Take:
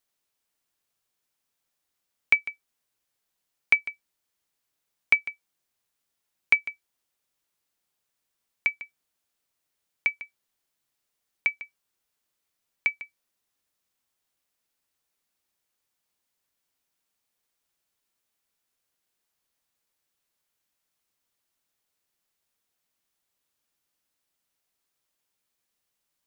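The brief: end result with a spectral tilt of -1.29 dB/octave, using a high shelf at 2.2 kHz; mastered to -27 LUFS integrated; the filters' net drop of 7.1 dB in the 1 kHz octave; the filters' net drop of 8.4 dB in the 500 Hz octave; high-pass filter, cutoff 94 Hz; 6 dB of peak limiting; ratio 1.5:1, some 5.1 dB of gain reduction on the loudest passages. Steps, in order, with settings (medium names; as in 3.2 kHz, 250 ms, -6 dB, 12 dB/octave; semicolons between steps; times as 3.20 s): high-pass 94 Hz; peaking EQ 500 Hz -8.5 dB; peaking EQ 1 kHz -9 dB; treble shelf 2.2 kHz +4.5 dB; compression 1.5:1, threshold -28 dBFS; trim +6.5 dB; peak limiter -8 dBFS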